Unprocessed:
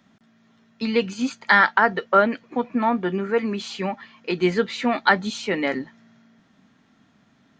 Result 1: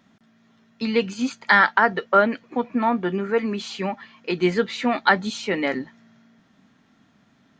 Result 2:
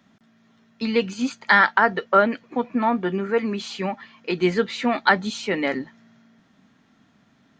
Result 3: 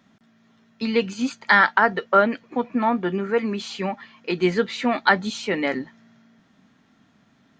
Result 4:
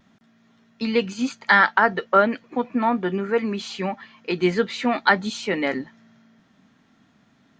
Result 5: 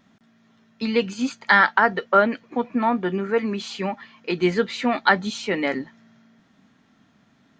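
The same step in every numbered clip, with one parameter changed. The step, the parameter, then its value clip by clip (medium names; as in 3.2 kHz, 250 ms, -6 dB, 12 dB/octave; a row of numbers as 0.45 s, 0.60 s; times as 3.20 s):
vibrato, rate: 2.9 Hz, 16 Hz, 4.8 Hz, 0.44 Hz, 1.1 Hz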